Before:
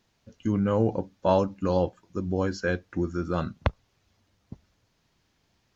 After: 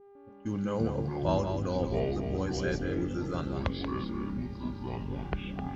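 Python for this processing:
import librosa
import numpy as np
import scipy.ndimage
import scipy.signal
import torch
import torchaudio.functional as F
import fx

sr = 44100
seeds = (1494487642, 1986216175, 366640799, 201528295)

y = fx.high_shelf(x, sr, hz=4200.0, db=11.5)
y = y + 10.0 ** (-7.0 / 20.0) * np.pad(y, (int(183 * sr / 1000.0), 0))[:len(y)]
y = fx.dmg_buzz(y, sr, base_hz=400.0, harmonics=15, level_db=-46.0, tilt_db=-8, odd_only=False)
y = fx.echo_pitch(y, sr, ms=152, semitones=-6, count=3, db_per_echo=-3.0)
y = fx.env_lowpass(y, sr, base_hz=500.0, full_db=-27.5)
y = y * librosa.db_to_amplitude(-8.0)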